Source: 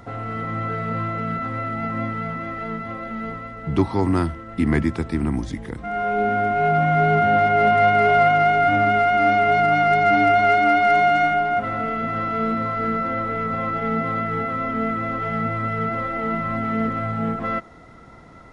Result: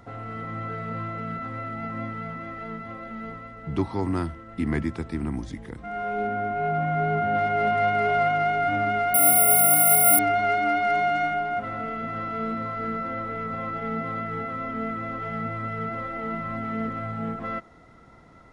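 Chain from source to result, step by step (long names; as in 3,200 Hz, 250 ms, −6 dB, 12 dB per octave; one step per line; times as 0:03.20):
0:06.27–0:07.35: high-shelf EQ 3,200 Hz −8.5 dB
0:09.14–0:10.19: bad sample-rate conversion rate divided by 4×, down none, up zero stuff
level −6.5 dB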